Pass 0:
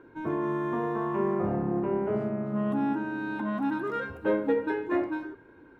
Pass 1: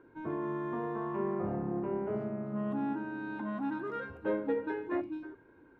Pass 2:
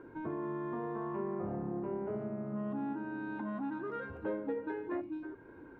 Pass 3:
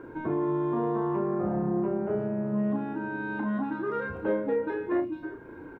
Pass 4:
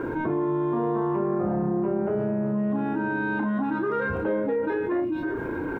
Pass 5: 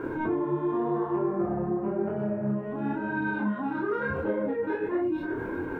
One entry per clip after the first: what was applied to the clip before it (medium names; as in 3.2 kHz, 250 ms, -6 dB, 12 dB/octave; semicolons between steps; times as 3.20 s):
time-frequency box 5.01–5.23 s, 360–2200 Hz -14 dB; low-pass 3.5 kHz 6 dB/octave; trim -6 dB
treble shelf 3.2 kHz -9 dB; compression 2:1, threshold -51 dBFS, peak gain reduction 13 dB; trim +7.5 dB
doubling 34 ms -4 dB; trim +7 dB
level flattener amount 70%
chorus voices 2, 0.93 Hz, delay 27 ms, depth 4.5 ms